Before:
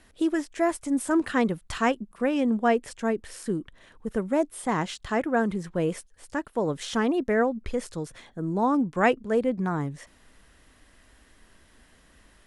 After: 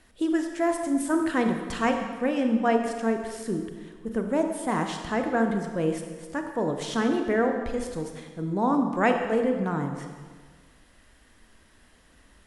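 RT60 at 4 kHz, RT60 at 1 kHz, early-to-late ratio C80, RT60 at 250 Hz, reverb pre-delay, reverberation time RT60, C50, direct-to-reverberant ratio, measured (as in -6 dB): 1.3 s, 1.6 s, 7.0 dB, 1.6 s, 29 ms, 1.6 s, 5.5 dB, 4.5 dB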